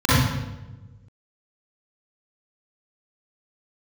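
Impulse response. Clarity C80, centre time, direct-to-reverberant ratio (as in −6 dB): −0.5 dB, 101 ms, −12.0 dB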